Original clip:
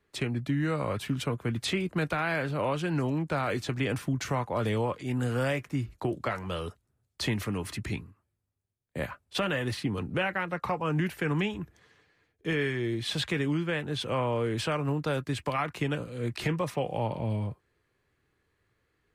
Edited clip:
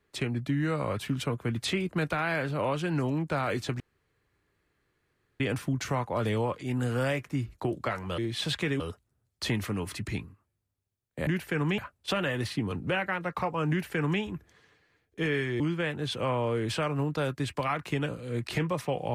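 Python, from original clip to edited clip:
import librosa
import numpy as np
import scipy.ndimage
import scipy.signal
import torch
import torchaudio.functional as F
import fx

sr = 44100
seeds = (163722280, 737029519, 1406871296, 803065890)

y = fx.edit(x, sr, fx.insert_room_tone(at_s=3.8, length_s=1.6),
    fx.duplicate(start_s=10.97, length_s=0.51, to_s=9.05),
    fx.move(start_s=12.87, length_s=0.62, to_s=6.58), tone=tone)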